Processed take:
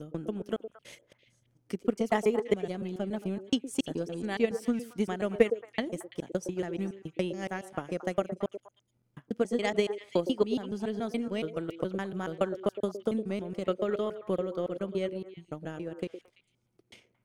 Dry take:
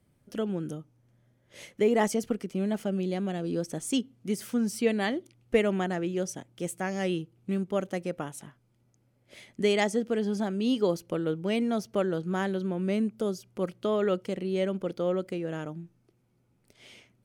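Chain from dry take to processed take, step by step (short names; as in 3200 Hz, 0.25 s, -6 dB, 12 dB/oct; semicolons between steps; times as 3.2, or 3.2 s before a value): slices in reverse order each 0.141 s, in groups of 6; transient shaper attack +9 dB, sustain -5 dB; delay with a stepping band-pass 0.112 s, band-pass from 410 Hz, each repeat 1.4 oct, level -7.5 dB; gain -6.5 dB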